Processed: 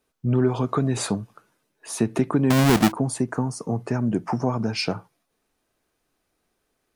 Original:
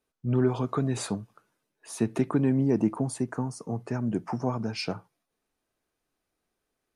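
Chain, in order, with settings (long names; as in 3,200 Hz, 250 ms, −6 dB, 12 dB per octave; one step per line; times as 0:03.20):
0:02.50–0:02.92: each half-wave held at its own peak
in parallel at +3 dB: downward compressor, threshold −29 dBFS, peak gain reduction 12.5 dB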